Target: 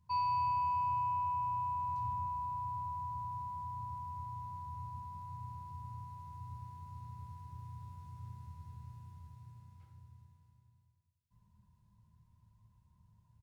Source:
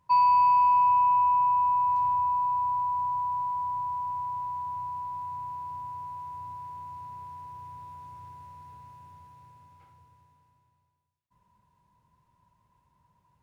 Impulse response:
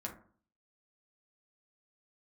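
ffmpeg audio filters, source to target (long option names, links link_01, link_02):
-filter_complex "[0:a]firequalizer=gain_entry='entry(130,0);entry(250,-12);entry(440,-18);entry(2200,-16);entry(4200,-10)':delay=0.05:min_phase=1,asplit=2[link_01][link_02];[1:a]atrim=start_sample=2205[link_03];[link_02][link_03]afir=irnorm=-1:irlink=0,volume=0.5dB[link_04];[link_01][link_04]amix=inputs=2:normalize=0,volume=1dB"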